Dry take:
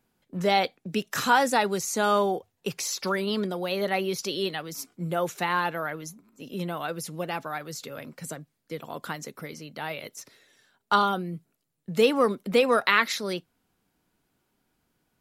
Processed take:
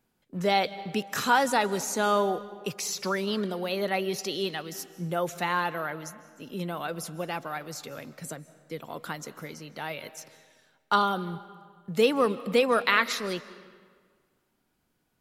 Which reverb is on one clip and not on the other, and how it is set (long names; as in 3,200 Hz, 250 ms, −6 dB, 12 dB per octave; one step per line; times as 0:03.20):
comb and all-pass reverb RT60 1.7 s, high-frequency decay 0.75×, pre-delay 115 ms, DRR 16 dB
level −1.5 dB